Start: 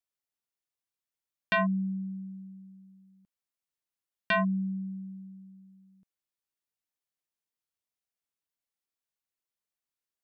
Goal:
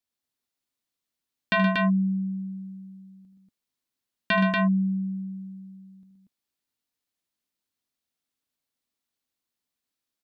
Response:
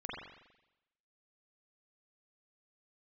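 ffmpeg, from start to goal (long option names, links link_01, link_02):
-af "equalizer=frequency=100:width_type=o:width=0.67:gain=3,equalizer=frequency=250:width_type=o:width=0.67:gain=9,equalizer=frequency=4000:width_type=o:width=0.67:gain=4,aecho=1:1:75.8|122.4|236.2:0.282|0.447|0.708,volume=2dB"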